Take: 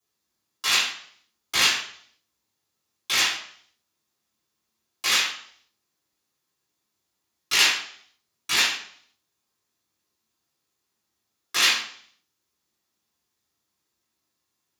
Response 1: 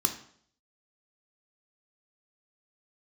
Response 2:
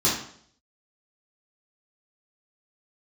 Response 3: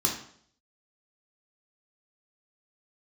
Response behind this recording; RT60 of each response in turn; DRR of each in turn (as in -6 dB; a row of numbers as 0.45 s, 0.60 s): 2; 0.60 s, 0.60 s, 0.60 s; 4.5 dB, -9.5 dB, -2.0 dB